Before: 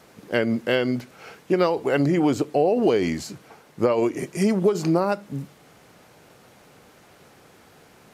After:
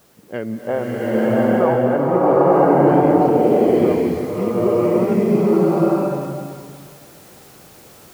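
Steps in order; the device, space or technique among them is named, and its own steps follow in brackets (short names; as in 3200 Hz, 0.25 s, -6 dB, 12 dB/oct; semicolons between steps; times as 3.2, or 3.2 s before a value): cassette deck with a dirty head (tape spacing loss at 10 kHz 36 dB; wow and flutter; white noise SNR 29 dB); 0.67–2.52 EQ curve 380 Hz 0 dB, 820 Hz +12 dB, 3000 Hz -10 dB; bloom reverb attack 0.96 s, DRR -9.5 dB; gain -2.5 dB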